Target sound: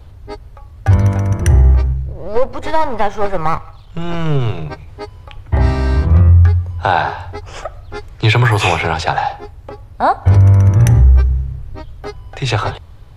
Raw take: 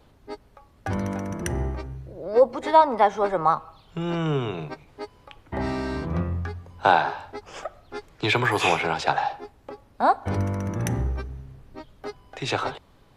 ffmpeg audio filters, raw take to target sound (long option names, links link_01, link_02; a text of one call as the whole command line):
ffmpeg -i in.wav -filter_complex "[0:a]asettb=1/sr,asplit=3[link_01][link_02][link_03];[link_01]atrim=end=1.934[link_04];[link_02]atrim=start=1.93:end=4.66,asetpts=PTS-STARTPTS,afade=type=in:duration=0.004:curve=qsin,afade=type=out:start_time=2.726:duration=0.004:curve=qsin,aeval=exprs='if(lt(val(0),0),0.447*val(0),val(0))':channel_layout=same[link_05];[link_03]atrim=start=4.656[link_06];[link_04][link_05]acrossfade=duration=0.004:curve1=hsin:curve2=qsin[link_07];[link_07][link_06]acrossfade=duration=0.004:curve1=qsin:curve2=hsin,lowshelf=frequency=140:width_type=q:width=1.5:gain=12.5,alimiter=level_in=9dB:limit=-1dB:release=50:level=0:latency=1,volume=-1dB" out.wav